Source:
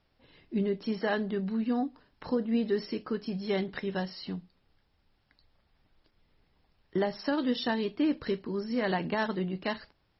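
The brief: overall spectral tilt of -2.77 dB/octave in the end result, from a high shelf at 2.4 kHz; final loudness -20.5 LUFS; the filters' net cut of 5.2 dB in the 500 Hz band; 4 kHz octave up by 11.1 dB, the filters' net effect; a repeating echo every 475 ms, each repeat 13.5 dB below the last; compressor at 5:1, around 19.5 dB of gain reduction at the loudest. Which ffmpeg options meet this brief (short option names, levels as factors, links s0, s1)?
-af "equalizer=f=500:t=o:g=-7.5,highshelf=f=2400:g=8,equalizer=f=4000:t=o:g=7,acompressor=threshold=0.00562:ratio=5,aecho=1:1:475|950:0.211|0.0444,volume=18.8"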